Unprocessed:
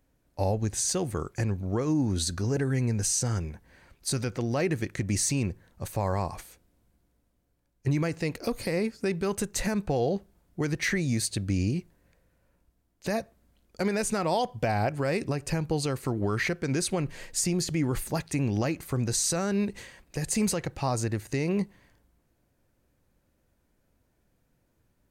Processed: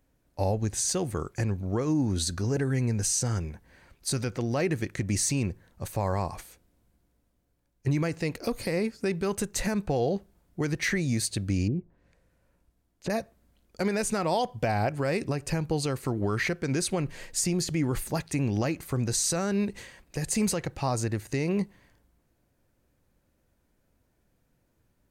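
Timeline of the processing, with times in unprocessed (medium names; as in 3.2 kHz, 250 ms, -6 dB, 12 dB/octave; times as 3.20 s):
11.67–13.10 s: low-pass that closes with the level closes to 640 Hz, closed at -29 dBFS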